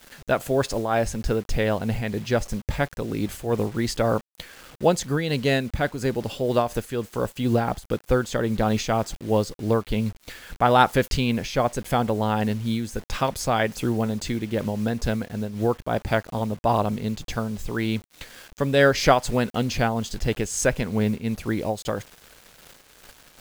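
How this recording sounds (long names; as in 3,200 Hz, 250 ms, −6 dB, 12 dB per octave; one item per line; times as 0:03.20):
a quantiser's noise floor 8 bits, dither none
amplitude modulation by smooth noise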